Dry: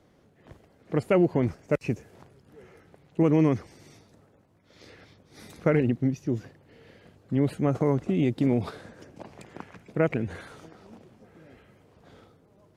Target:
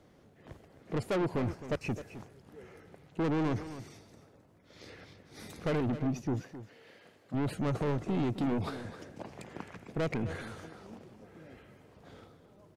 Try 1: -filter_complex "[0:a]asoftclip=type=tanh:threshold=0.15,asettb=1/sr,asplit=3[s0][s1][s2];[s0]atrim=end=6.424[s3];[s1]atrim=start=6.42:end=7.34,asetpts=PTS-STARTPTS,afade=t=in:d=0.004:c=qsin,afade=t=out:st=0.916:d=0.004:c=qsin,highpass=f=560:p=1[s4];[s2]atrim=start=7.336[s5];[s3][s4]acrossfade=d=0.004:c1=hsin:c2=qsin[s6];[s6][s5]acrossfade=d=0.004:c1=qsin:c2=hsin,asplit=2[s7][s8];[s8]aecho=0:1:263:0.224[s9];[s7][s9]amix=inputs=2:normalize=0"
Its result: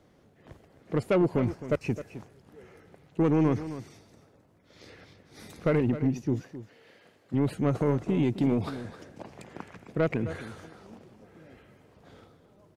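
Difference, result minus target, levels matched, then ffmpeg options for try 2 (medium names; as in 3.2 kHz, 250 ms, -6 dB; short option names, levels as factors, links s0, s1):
saturation: distortion -10 dB
-filter_complex "[0:a]asoftclip=type=tanh:threshold=0.0422,asettb=1/sr,asplit=3[s0][s1][s2];[s0]atrim=end=6.424[s3];[s1]atrim=start=6.42:end=7.34,asetpts=PTS-STARTPTS,afade=t=in:d=0.004:c=qsin,afade=t=out:st=0.916:d=0.004:c=qsin,highpass=f=560:p=1[s4];[s2]atrim=start=7.336[s5];[s3][s4]acrossfade=d=0.004:c1=hsin:c2=qsin[s6];[s6][s5]acrossfade=d=0.004:c1=qsin:c2=hsin,asplit=2[s7][s8];[s8]aecho=0:1:263:0.224[s9];[s7][s9]amix=inputs=2:normalize=0"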